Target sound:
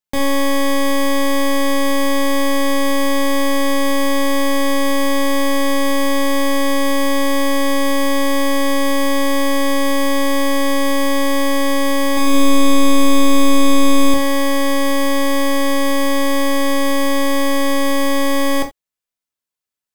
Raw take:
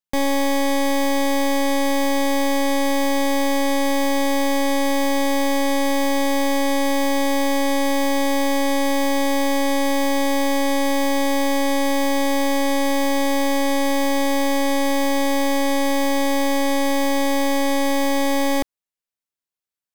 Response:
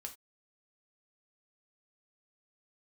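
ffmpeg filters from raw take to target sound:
-filter_complex "[0:a]asettb=1/sr,asplit=3[a][b][c];[a]atrim=end=12.034[d];[b]atrim=start=12.03:end=14.14,asetpts=PTS-STARTPTS,afade=t=in:d=0.004:c=qsin,afade=t=out:st=2.106:d=0.004:c=qsin,aecho=1:1:140|238|306.6|354.6|388.2:0.631|0.398|0.251|0.158|0.1,atrim=end_sample=93051[e];[c]atrim=start=14.136[f];[d][e]acrossfade=d=0.004:c1=hsin:c2=qsin[g];[g][f]acrossfade=d=0.004:c1=qsin:c2=hsin[h];[1:a]atrim=start_sample=2205,atrim=end_sample=3969[i];[h][i]afir=irnorm=-1:irlink=0,volume=7dB"

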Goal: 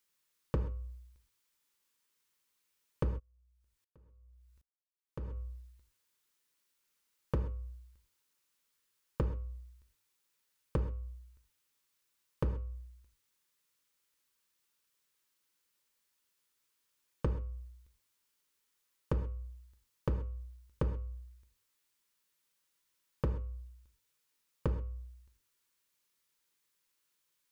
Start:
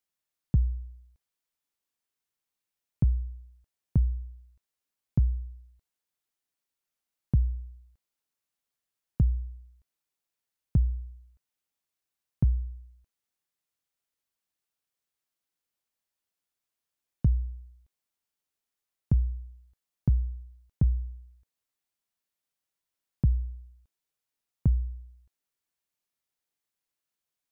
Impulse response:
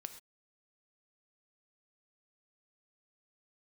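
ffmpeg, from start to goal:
-filter_complex "[0:a]aeval=exprs='0.112*(abs(mod(val(0)/0.112+3,4)-2)-1)':c=same,acompressor=threshold=-34dB:ratio=6,asuperstop=centerf=710:order=4:qfactor=3.2,lowshelf=f=490:g=-4.5,bandreject=f=101.4:t=h:w=4,bandreject=f=202.8:t=h:w=4,bandreject=f=304.2:t=h:w=4,bandreject=f=405.6:t=h:w=4,bandreject=f=507:t=h:w=4,bandreject=f=608.4:t=h:w=4,bandreject=f=709.8:t=h:w=4,bandreject=f=811.2:t=h:w=4,bandreject=f=912.6:t=h:w=4,bandreject=f=1.014k:t=h:w=4,bandreject=f=1.1154k:t=h:w=4,bandreject=f=1.2168k:t=h:w=4,bandreject=f=1.3182k:t=h:w=4,bandreject=f=1.4196k:t=h:w=4,bandreject=f=1.521k:t=h:w=4,bandreject=f=1.6224k:t=h:w=4,bandreject=f=1.7238k:t=h:w=4,bandreject=f=1.8252k:t=h:w=4,bandreject=f=1.9266k:t=h:w=4,bandreject=f=2.028k:t=h:w=4,bandreject=f=2.1294k:t=h:w=4,bandreject=f=2.2308k:t=h:w=4,bandreject=f=2.3322k:t=h:w=4,bandreject=f=2.4336k:t=h:w=4,bandreject=f=2.535k:t=h:w=4,bandreject=f=2.6364k:t=h:w=4,bandreject=f=2.7378k:t=h:w=4,bandreject=f=2.8392k:t=h:w=4[a];[1:a]atrim=start_sample=2205[b];[a][b]afir=irnorm=-1:irlink=0,asplit=3[c][d][e];[c]afade=t=out:st=3.18:d=0.02[f];[d]aeval=exprs='val(0)*pow(10,-38*if(lt(mod(-1.3*n/s,1),2*abs(-1.3)/1000),1-mod(-1.3*n/s,1)/(2*abs(-1.3)/1000),(mod(-1.3*n/s,1)-2*abs(-1.3)/1000)/(1-2*abs(-1.3)/1000))/20)':c=same,afade=t=in:st=3.18:d=0.02,afade=t=out:st=5.36:d=0.02[g];[e]afade=t=in:st=5.36:d=0.02[h];[f][g][h]amix=inputs=3:normalize=0,volume=12.5dB"

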